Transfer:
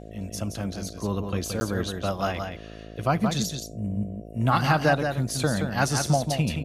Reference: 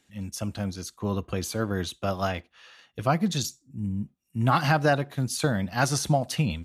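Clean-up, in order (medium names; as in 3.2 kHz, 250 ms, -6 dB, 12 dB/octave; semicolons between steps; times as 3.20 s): de-hum 54.1 Hz, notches 13; interpolate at 1.60 s, 10 ms; inverse comb 173 ms -6 dB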